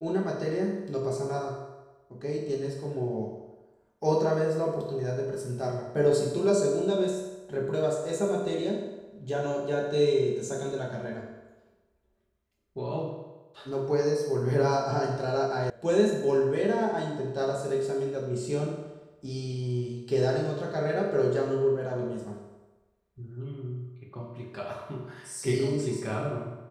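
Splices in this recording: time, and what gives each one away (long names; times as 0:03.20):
0:15.70: cut off before it has died away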